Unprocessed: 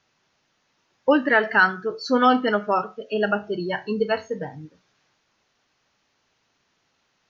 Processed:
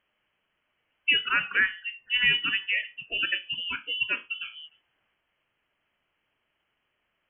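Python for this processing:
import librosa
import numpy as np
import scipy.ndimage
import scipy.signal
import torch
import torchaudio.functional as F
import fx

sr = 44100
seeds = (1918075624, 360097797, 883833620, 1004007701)

y = fx.low_shelf(x, sr, hz=280.0, db=-10.0, at=(1.25, 2.14))
y = fx.freq_invert(y, sr, carrier_hz=3200)
y = y * librosa.db_to_amplitude(-6.0)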